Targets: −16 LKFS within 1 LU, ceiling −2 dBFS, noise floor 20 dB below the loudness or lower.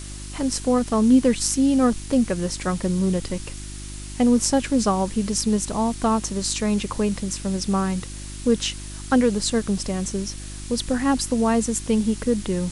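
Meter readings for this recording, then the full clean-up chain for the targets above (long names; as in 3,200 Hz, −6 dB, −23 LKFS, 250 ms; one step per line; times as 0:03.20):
mains hum 50 Hz; hum harmonics up to 350 Hz; level of the hum −34 dBFS; background noise floor −36 dBFS; target noise floor −43 dBFS; integrated loudness −22.5 LKFS; sample peak −4.0 dBFS; target loudness −16.0 LKFS
→ hum removal 50 Hz, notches 7
noise reduction from a noise print 7 dB
level +6.5 dB
brickwall limiter −2 dBFS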